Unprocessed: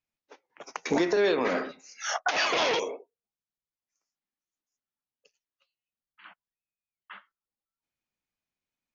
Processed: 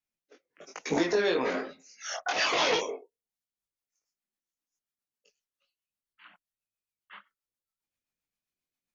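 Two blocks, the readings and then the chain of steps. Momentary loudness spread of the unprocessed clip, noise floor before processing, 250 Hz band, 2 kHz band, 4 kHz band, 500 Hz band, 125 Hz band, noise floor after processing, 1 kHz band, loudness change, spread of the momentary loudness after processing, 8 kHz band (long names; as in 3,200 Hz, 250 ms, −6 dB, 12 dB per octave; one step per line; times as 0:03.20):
15 LU, below −85 dBFS, −2.0 dB, −1.5 dB, 0.0 dB, −2.0 dB, −0.5 dB, below −85 dBFS, −2.0 dB, −1.0 dB, 17 LU, can't be measured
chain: multi-voice chorus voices 2, 1.1 Hz, delay 21 ms, depth 3 ms
high-shelf EQ 5,800 Hz +5 dB
rotating-speaker cabinet horn 0.65 Hz, later 7.5 Hz, at 0:03.00
level +2.5 dB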